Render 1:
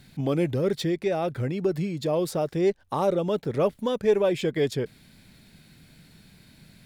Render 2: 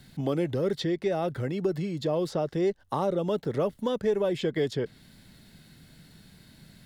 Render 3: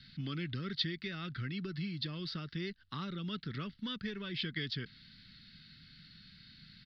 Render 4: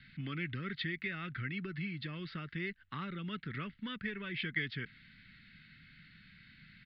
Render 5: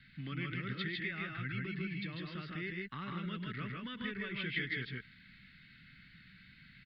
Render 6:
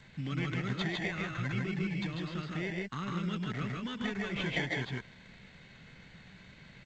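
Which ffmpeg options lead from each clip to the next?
-filter_complex "[0:a]bandreject=f=2.4k:w=7.8,acrossover=split=290|6200[a][b][c];[a]acompressor=threshold=-31dB:ratio=4[d];[b]acompressor=threshold=-25dB:ratio=4[e];[c]acompressor=threshold=-60dB:ratio=4[f];[d][e][f]amix=inputs=3:normalize=0"
-af "firequalizer=gain_entry='entry(210,0);entry(530,-23);entry(800,-22);entry(1300,4);entry(4700,11);entry(6900,-24)':delay=0.05:min_phase=1,volume=-6.5dB"
-af "lowpass=f=2.2k:t=q:w=2.7,volume=-1.5dB"
-af "aecho=1:1:104|141|157:0.168|0.531|0.708,volume=-2.5dB"
-filter_complex "[0:a]asplit=2[a][b];[b]acrusher=samples=17:mix=1:aa=0.000001,volume=-6dB[c];[a][c]amix=inputs=2:normalize=0,volume=2.5dB" -ar 16000 -c:a g722

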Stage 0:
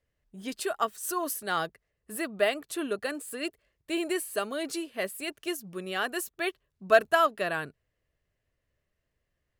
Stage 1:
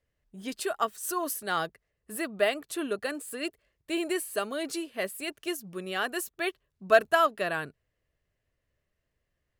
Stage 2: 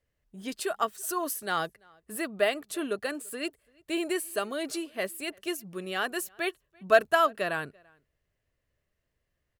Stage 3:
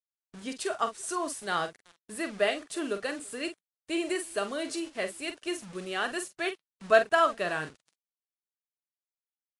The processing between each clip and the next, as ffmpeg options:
-af anull
-filter_complex "[0:a]asplit=2[a][b];[b]adelay=338.2,volume=-28dB,highshelf=f=4k:g=-7.61[c];[a][c]amix=inputs=2:normalize=0"
-filter_complex "[0:a]acrusher=bits=7:mix=0:aa=0.000001,asplit=2[a][b];[b]adelay=45,volume=-9.5dB[c];[a][c]amix=inputs=2:normalize=0,volume=-1dB" -ar 22050 -c:a libvorbis -b:a 48k

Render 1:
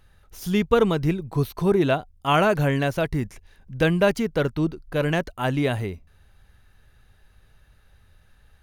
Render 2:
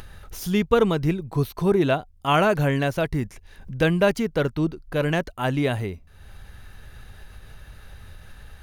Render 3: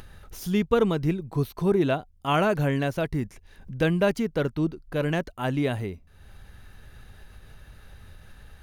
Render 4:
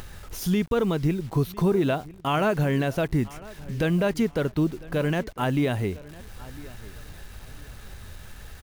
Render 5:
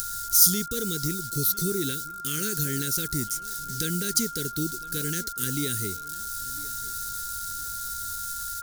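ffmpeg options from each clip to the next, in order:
-af "acompressor=mode=upward:threshold=-29dB:ratio=2.5"
-af "equalizer=f=250:w=0.74:g=3,volume=-4.5dB"
-filter_complex "[0:a]alimiter=limit=-19dB:level=0:latency=1:release=149,acrusher=bits=8:mix=0:aa=0.000001,asplit=2[a][b];[b]adelay=1002,lowpass=f=4.5k:p=1,volume=-20dB,asplit=2[c][d];[d]adelay=1002,lowpass=f=4.5k:p=1,volume=0.28[e];[a][c][e]amix=inputs=3:normalize=0,volume=5dB"
-af "asuperstop=centerf=810:order=8:qfactor=0.84,aexciter=amount=15:drive=6.4:freq=4.1k,aeval=exprs='val(0)+0.0355*sin(2*PI*1400*n/s)':c=same,volume=-7dB"

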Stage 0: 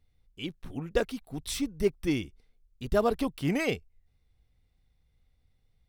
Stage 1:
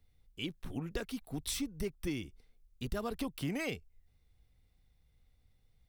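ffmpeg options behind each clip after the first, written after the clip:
-filter_complex "[0:a]highshelf=f=9.2k:g=5,acrossover=split=300|1000[a][b][c];[b]alimiter=level_in=4dB:limit=-24dB:level=0:latency=1:release=155,volume=-4dB[d];[a][d][c]amix=inputs=3:normalize=0,acompressor=threshold=-34dB:ratio=4"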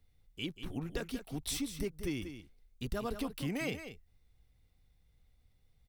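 -af "aecho=1:1:187:0.316"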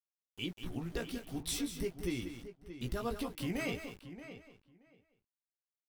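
-filter_complex "[0:a]asplit=2[a][b];[b]adelay=17,volume=-5.5dB[c];[a][c]amix=inputs=2:normalize=0,aeval=exprs='val(0)*gte(abs(val(0)),0.00251)':c=same,asplit=2[d][e];[e]adelay=627,lowpass=f=3.3k:p=1,volume=-12dB,asplit=2[f][g];[g]adelay=627,lowpass=f=3.3k:p=1,volume=0.15[h];[d][f][h]amix=inputs=3:normalize=0,volume=-1.5dB"

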